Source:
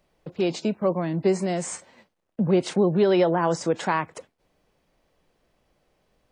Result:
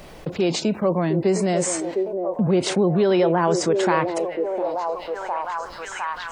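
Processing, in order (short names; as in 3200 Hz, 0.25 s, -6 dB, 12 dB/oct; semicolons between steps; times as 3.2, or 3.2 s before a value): delay with a stepping band-pass 0.707 s, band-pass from 450 Hz, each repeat 0.7 oct, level -6 dB; fast leveller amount 50%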